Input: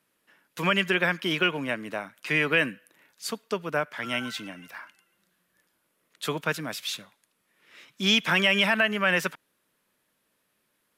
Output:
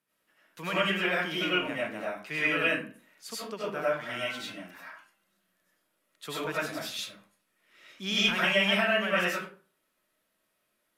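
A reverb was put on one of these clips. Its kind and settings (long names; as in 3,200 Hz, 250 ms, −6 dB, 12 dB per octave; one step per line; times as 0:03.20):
comb and all-pass reverb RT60 0.42 s, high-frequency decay 0.6×, pre-delay 55 ms, DRR −8 dB
level −11 dB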